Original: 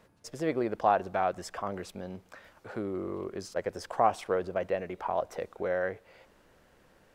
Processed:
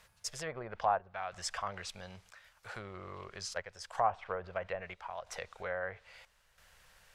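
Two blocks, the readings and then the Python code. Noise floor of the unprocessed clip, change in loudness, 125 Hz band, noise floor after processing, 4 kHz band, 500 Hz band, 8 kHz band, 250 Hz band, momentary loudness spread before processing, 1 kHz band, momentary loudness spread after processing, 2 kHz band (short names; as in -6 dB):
-63 dBFS, -6.5 dB, -6.0 dB, -70 dBFS, +3.5 dB, -9.5 dB, +4.0 dB, -16.5 dB, 15 LU, -5.5 dB, 18 LU, -2.0 dB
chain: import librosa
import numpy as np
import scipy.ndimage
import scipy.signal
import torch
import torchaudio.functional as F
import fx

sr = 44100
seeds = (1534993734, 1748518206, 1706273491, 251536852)

y = fx.chopper(x, sr, hz=0.76, depth_pct=60, duty_pct=75)
y = fx.env_lowpass_down(y, sr, base_hz=1100.0, full_db=-25.0)
y = fx.tone_stack(y, sr, knobs='10-0-10')
y = y * librosa.db_to_amplitude(8.0)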